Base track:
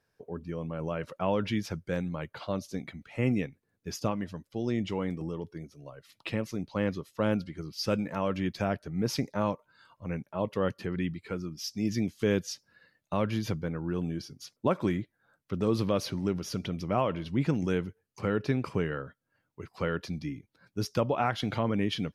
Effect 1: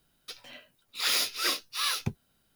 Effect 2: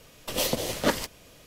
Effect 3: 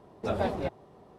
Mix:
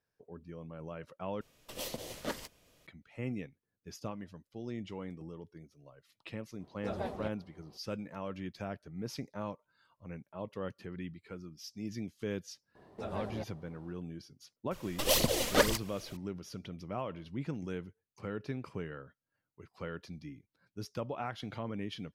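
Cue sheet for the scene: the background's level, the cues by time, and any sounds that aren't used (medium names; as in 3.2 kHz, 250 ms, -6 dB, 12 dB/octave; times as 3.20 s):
base track -10.5 dB
1.41 s: replace with 2 -13.5 dB
6.60 s: add 3 -9 dB
12.75 s: add 3 -5 dB + compression 1.5:1, threshold -40 dBFS
14.71 s: add 2 -2.5 dB + phaser 2 Hz, delay 4.4 ms, feedback 59%
not used: 1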